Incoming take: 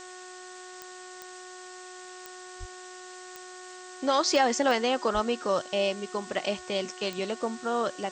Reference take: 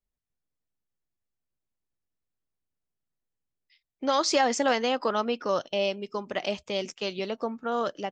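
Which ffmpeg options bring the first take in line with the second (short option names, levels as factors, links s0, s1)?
-filter_complex "[0:a]adeclick=t=4,bandreject=f=366.3:t=h:w=4,bandreject=f=732.6:t=h:w=4,bandreject=f=1098.9:t=h:w=4,bandreject=f=1465.2:t=h:w=4,bandreject=f=1831.5:t=h:w=4,asplit=3[s0][s1][s2];[s0]afade=t=out:st=2.59:d=0.02[s3];[s1]highpass=f=140:w=0.5412,highpass=f=140:w=1.3066,afade=t=in:st=2.59:d=0.02,afade=t=out:st=2.71:d=0.02[s4];[s2]afade=t=in:st=2.71:d=0.02[s5];[s3][s4][s5]amix=inputs=3:normalize=0,asplit=3[s6][s7][s8];[s6]afade=t=out:st=5.13:d=0.02[s9];[s7]highpass=f=140:w=0.5412,highpass=f=140:w=1.3066,afade=t=in:st=5.13:d=0.02,afade=t=out:st=5.25:d=0.02[s10];[s8]afade=t=in:st=5.25:d=0.02[s11];[s9][s10][s11]amix=inputs=3:normalize=0,afftdn=nr=30:nf=-45"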